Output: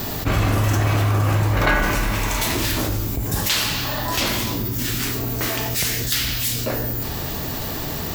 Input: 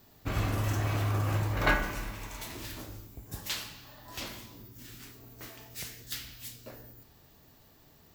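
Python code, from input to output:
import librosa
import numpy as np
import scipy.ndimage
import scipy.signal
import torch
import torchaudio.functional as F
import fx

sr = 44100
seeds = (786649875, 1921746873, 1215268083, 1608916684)

y = fx.env_flatten(x, sr, amount_pct=70)
y = y * librosa.db_to_amplitude(6.0)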